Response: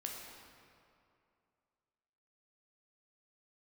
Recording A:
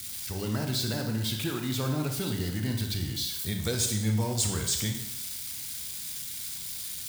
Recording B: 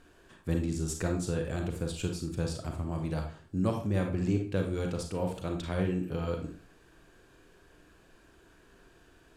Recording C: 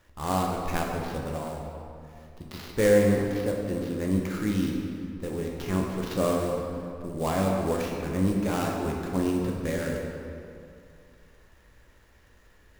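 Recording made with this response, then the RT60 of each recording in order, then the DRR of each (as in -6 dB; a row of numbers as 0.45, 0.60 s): C; 0.85, 0.45, 2.5 s; 3.5, 3.0, -1.0 dB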